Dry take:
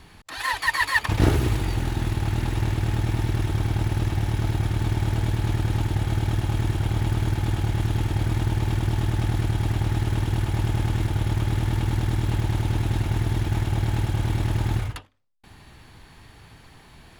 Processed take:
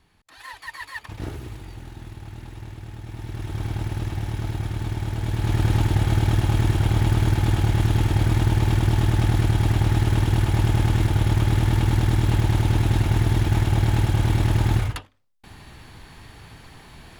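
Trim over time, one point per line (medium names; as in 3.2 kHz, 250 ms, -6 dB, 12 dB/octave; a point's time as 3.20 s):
3.01 s -13.5 dB
3.64 s -3.5 dB
5.17 s -3.5 dB
5.63 s +4 dB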